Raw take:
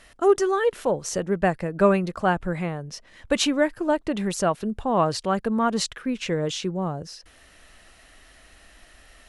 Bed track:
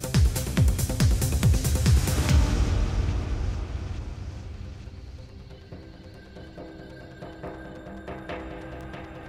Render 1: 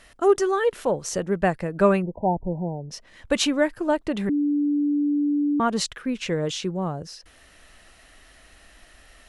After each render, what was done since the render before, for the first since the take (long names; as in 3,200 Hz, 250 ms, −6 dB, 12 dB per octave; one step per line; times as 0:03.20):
0:02.02–0:02.91: linear-phase brick-wall low-pass 1,000 Hz
0:04.29–0:05.60: beep over 291 Hz −19 dBFS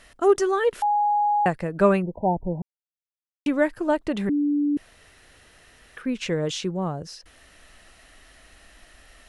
0:00.82–0:01.46: beep over 829 Hz −18 dBFS
0:02.62–0:03.46: silence
0:04.77–0:05.97: fill with room tone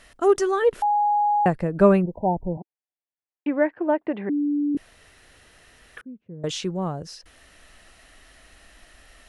0:00.62–0:02.06: tilt shelving filter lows +4.5 dB
0:02.57–0:04.75: loudspeaker in its box 270–2,300 Hz, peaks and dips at 330 Hz +3 dB, 750 Hz +4 dB, 1,300 Hz −6 dB
0:06.01–0:06.44: four-pole ladder band-pass 170 Hz, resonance 25%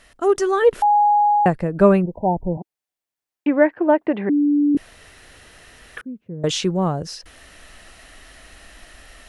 automatic gain control gain up to 7 dB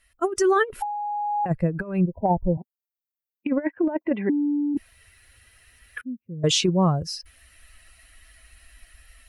spectral dynamics exaggerated over time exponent 1.5
compressor whose output falls as the input rises −21 dBFS, ratio −0.5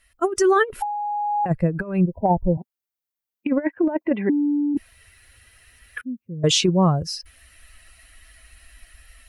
level +2.5 dB